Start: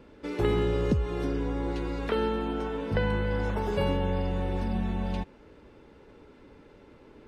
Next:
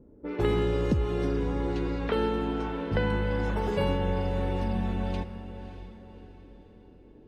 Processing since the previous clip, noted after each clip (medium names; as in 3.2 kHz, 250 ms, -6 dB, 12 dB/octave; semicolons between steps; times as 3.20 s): level-controlled noise filter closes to 340 Hz, open at -25 dBFS; echo that smears into a reverb 597 ms, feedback 42%, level -12 dB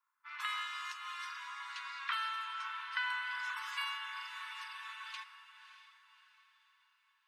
steep high-pass 1 kHz 96 dB/octave; trim +1 dB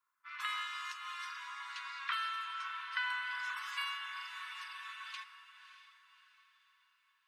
band-stop 890 Hz, Q 12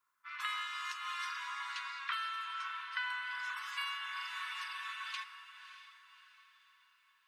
gain riding within 3 dB 0.5 s; trim +1 dB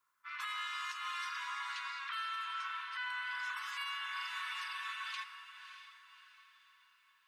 peak limiter -32 dBFS, peak gain reduction 8.5 dB; trim +1 dB